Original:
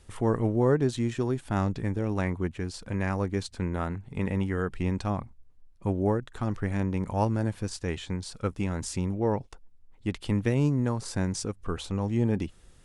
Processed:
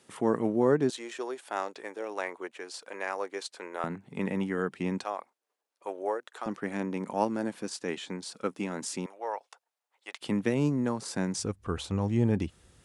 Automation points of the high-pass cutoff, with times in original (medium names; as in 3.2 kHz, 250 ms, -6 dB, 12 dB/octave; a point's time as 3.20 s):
high-pass 24 dB/octave
170 Hz
from 0.90 s 430 Hz
from 3.84 s 170 Hz
from 5.04 s 460 Hz
from 6.46 s 210 Hz
from 9.06 s 620 Hz
from 10.21 s 160 Hz
from 11.37 s 53 Hz